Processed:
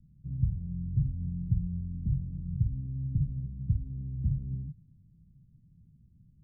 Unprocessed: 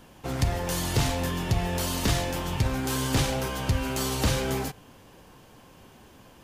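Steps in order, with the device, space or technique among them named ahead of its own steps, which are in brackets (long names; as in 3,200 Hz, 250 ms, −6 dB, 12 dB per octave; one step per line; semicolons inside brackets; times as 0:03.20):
the neighbour's flat through the wall (low-pass filter 160 Hz 24 dB per octave; parametric band 160 Hz +6.5 dB 0.69 octaves)
level −3.5 dB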